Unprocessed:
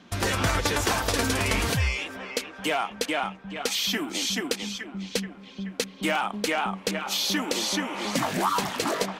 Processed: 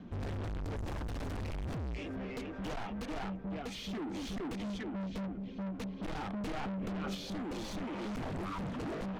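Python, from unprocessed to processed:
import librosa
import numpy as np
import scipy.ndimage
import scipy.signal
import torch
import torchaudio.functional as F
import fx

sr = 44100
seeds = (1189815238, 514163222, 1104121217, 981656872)

y = fx.rotary(x, sr, hz=0.6)
y = 10.0 ** (-26.0 / 20.0) * (np.abs((y / 10.0 ** (-26.0 / 20.0) + 3.0) % 4.0 - 2.0) - 1.0)
y = fx.rider(y, sr, range_db=3, speed_s=0.5)
y = fx.tilt_eq(y, sr, slope=-4.5)
y = 10.0 ** (-34.5 / 20.0) * np.tanh(y / 10.0 ** (-34.5 / 20.0))
y = fx.env_flatten(y, sr, amount_pct=100, at=(6.33, 7.15))
y = y * 10.0 ** (-2.0 / 20.0)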